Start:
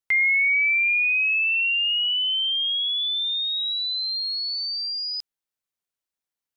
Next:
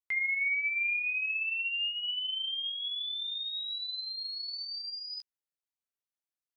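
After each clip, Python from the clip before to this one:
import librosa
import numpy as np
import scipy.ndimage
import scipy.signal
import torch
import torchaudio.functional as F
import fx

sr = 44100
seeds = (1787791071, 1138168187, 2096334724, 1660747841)

y = fx.chorus_voices(x, sr, voices=2, hz=0.4, base_ms=19, depth_ms=4.4, mix_pct=25)
y = y * 10.0 ** (-8.5 / 20.0)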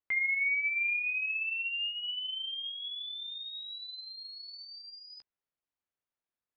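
y = scipy.signal.sosfilt(scipy.signal.bessel(2, 1900.0, 'lowpass', norm='mag', fs=sr, output='sos'), x)
y = y * 10.0 ** (4.5 / 20.0)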